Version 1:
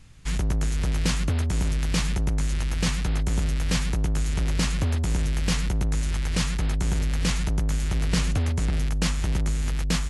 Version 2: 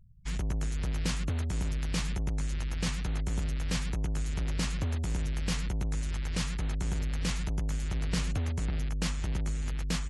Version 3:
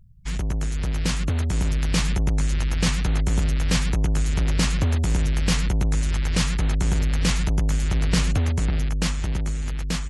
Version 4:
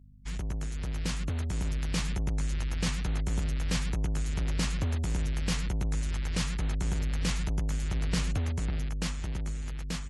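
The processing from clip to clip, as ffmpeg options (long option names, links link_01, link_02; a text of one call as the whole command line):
ffmpeg -i in.wav -af "afftfilt=real='re*gte(hypot(re,im),0.00794)':imag='im*gte(hypot(re,im),0.00794)':win_size=1024:overlap=0.75,volume=-7dB" out.wav
ffmpeg -i in.wav -af "dynaudnorm=framelen=260:gausssize=11:maxgain=4dB,volume=6dB" out.wav
ffmpeg -i in.wav -af "aeval=exprs='val(0)+0.00562*(sin(2*PI*50*n/s)+sin(2*PI*2*50*n/s)/2+sin(2*PI*3*50*n/s)/3+sin(2*PI*4*50*n/s)/4+sin(2*PI*5*50*n/s)/5)':channel_layout=same,volume=-8.5dB" out.wav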